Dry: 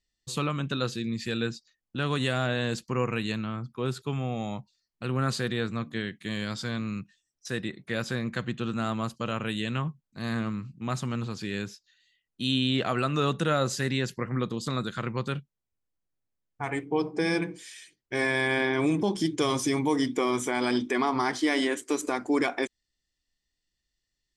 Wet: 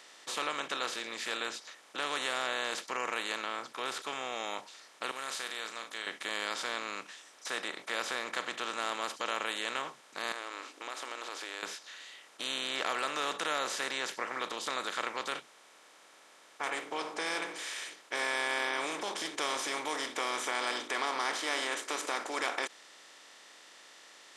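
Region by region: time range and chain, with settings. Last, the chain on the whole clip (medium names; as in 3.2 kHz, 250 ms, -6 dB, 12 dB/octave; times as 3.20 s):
5.11–6.07 s: pre-emphasis filter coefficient 0.9 + doubling 36 ms -12.5 dB
10.32–11.63 s: brick-wall FIR high-pass 260 Hz + compression 5:1, threshold -46 dBFS
whole clip: spectral levelling over time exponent 0.4; high-pass 660 Hz 12 dB/octave; trim -9 dB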